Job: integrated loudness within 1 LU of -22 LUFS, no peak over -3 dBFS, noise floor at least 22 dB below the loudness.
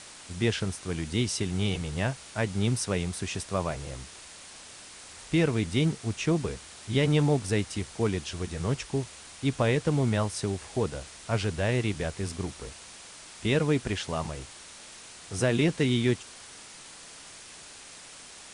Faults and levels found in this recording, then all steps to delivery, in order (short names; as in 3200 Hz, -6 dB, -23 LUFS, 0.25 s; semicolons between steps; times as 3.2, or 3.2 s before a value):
noise floor -47 dBFS; noise floor target -51 dBFS; loudness -29.0 LUFS; peak -12.5 dBFS; loudness target -22.0 LUFS
-> denoiser 6 dB, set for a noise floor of -47 dBFS; gain +7 dB